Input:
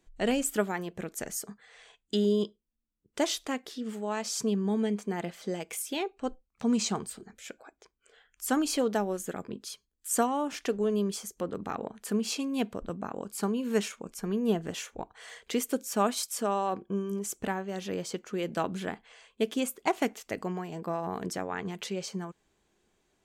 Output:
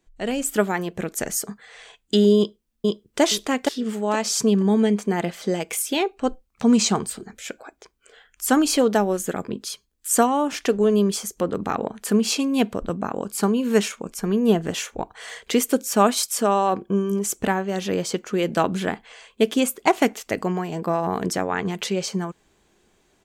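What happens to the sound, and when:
0:02.37–0:03.21: delay throw 470 ms, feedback 25%, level −1.5 dB
whole clip: automatic gain control gain up to 10 dB

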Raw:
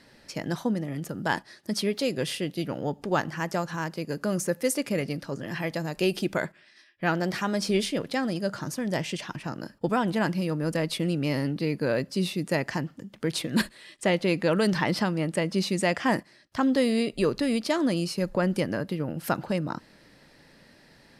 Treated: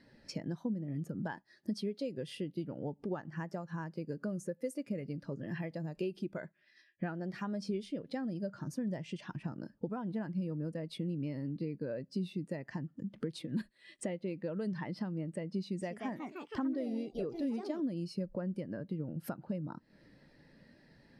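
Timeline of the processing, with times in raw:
0:15.60–0:17.96: delay with pitch and tempo change per echo 217 ms, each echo +3 semitones, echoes 3, each echo −6 dB
whole clip: low-shelf EQ 320 Hz +2 dB; downward compressor 10 to 1, threshold −38 dBFS; every bin expanded away from the loudest bin 1.5 to 1; level −1 dB

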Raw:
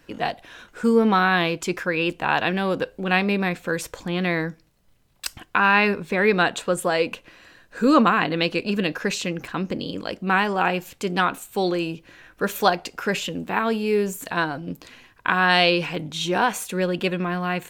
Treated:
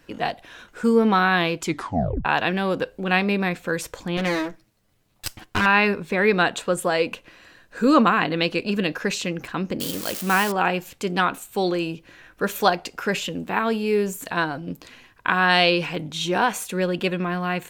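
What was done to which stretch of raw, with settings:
0:01.65: tape stop 0.60 s
0:04.17–0:05.66: lower of the sound and its delayed copy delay 9.4 ms
0:09.80–0:10.52: spike at every zero crossing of −18.5 dBFS

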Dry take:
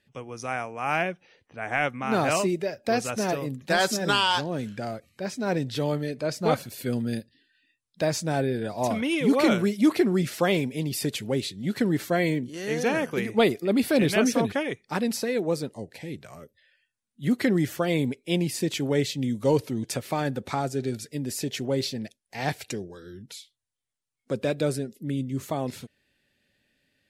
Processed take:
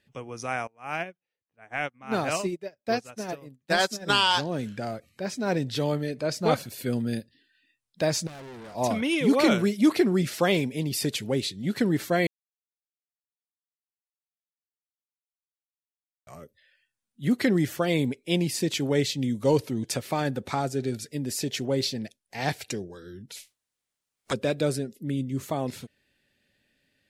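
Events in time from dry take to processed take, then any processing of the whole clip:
0:00.67–0:04.10: expander for the loud parts 2.5 to 1, over −41 dBFS
0:08.27–0:08.75: tube saturation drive 41 dB, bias 0.6
0:12.27–0:16.27: silence
0:23.35–0:24.32: ceiling on every frequency bin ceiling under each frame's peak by 27 dB
whole clip: dynamic equaliser 4,900 Hz, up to +3 dB, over −40 dBFS, Q 0.94

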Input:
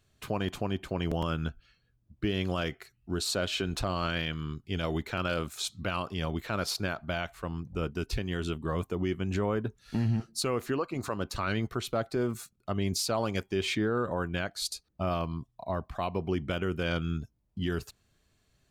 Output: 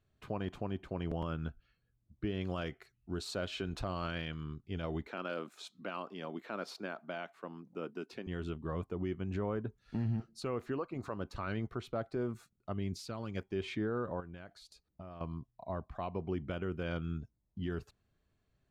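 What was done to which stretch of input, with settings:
0:02.41–0:04.44: high-shelf EQ 3,300 Hz +6 dB
0:05.07–0:08.27: high-pass filter 210 Hz 24 dB per octave
0:12.72–0:13.35: parametric band 690 Hz −4 dB → −13 dB 1.5 octaves
0:14.20–0:15.21: downward compressor 10 to 1, threshold −37 dBFS
whole clip: low-pass filter 1,600 Hz 6 dB per octave; level −6 dB

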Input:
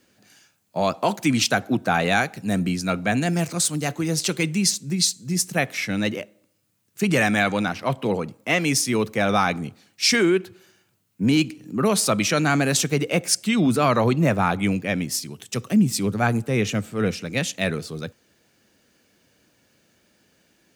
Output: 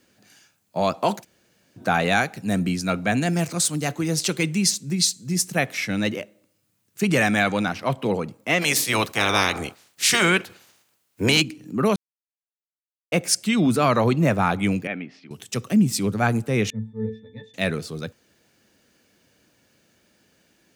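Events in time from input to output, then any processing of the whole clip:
0:01.22–0:01.79: fill with room tone, crossfade 0.06 s
0:08.61–0:11.40: ceiling on every frequency bin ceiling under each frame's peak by 21 dB
0:11.96–0:13.12: silence
0:14.87–0:15.31: loudspeaker in its box 310–2,500 Hz, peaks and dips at 350 Hz −4 dB, 540 Hz −9 dB, 1,000 Hz −9 dB, 1,800 Hz −4 dB
0:16.70–0:17.54: resonances in every octave A, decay 0.26 s

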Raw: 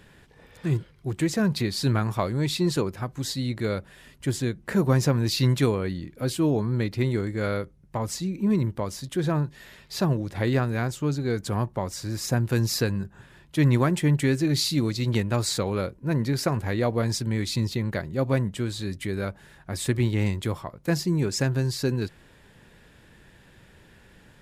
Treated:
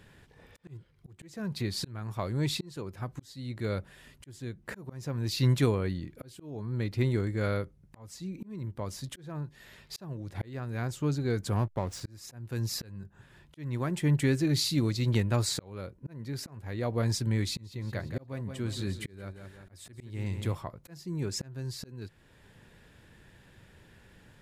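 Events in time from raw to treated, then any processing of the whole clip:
0:11.56–0:12.01: slack as between gear wheels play −35 dBFS
0:17.42–0:20.55: repeating echo 175 ms, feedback 38%, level −11.5 dB
whole clip: parametric band 100 Hz +4 dB 0.71 octaves; volume swells 621 ms; level −4 dB

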